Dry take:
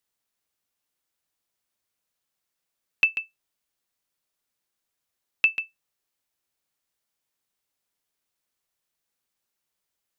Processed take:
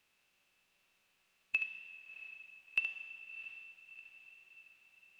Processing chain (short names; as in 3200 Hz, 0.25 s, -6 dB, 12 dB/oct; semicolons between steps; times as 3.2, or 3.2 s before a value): per-bin compression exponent 0.6; time stretch by phase-locked vocoder 0.51×; resonator 190 Hz, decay 1.5 s, mix 80%; wow and flutter 21 cents; diffused feedback echo 0.698 s, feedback 55%, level -13 dB; on a send at -13 dB: reverb RT60 4.3 s, pre-delay 20 ms; on the sum: gain +2.5 dB